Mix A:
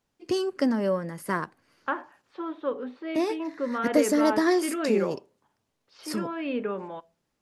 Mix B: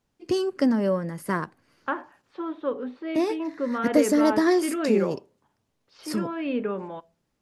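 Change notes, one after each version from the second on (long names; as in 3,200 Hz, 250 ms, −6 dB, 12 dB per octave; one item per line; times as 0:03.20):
master: add low-shelf EQ 290 Hz +5.5 dB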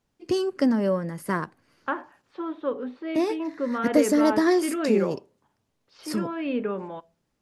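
nothing changed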